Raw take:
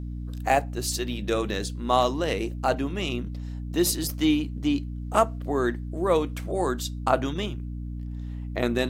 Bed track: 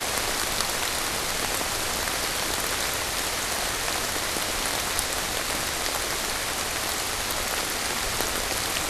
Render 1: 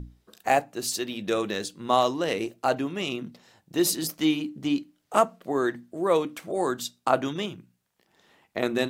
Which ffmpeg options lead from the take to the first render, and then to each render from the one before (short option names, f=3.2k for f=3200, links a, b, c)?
-af "bandreject=f=60:t=h:w=6,bandreject=f=120:t=h:w=6,bandreject=f=180:t=h:w=6,bandreject=f=240:t=h:w=6,bandreject=f=300:t=h:w=6"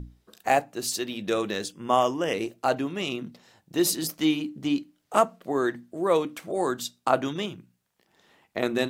-filter_complex "[0:a]asettb=1/sr,asplit=3[a][b][c];[a]atrim=end=1.724[d];[b]atrim=start=1.72:end=2.34,asetpts=PTS-STARTPTS,afade=t=in:d=0.004:c=qsin,afade=t=out:st=0.616:d=0.004:c=qsin,asuperstop=centerf=4100:order=12:qfactor=3.3[e];[c]atrim=start=2.336[f];[d][e]acrossfade=d=0.004:c1=hsin:c2=qsin[g];[g][f]acrossfade=d=0.004:c1=qsin:c2=hsin"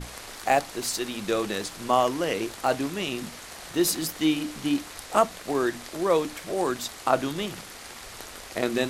-filter_complex "[1:a]volume=-14.5dB[a];[0:a][a]amix=inputs=2:normalize=0"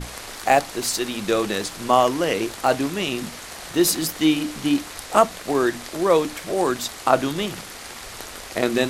-af "volume=5dB"